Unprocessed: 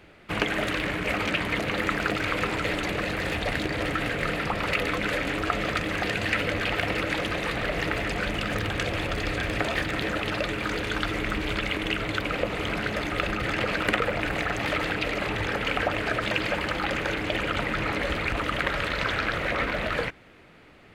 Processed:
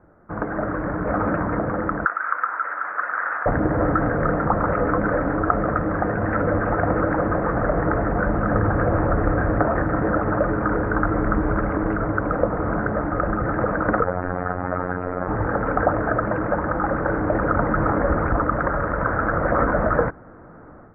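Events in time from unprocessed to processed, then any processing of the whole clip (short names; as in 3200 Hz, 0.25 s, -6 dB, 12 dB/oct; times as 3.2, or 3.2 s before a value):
2.05–3.46 resonant high-pass 1400 Hz, resonance Q 2.4
14.04–15.28 robotiser 90.2 Hz
whole clip: AGC gain up to 11.5 dB; steep low-pass 1500 Hz 48 dB/oct; notch 400 Hz, Q 12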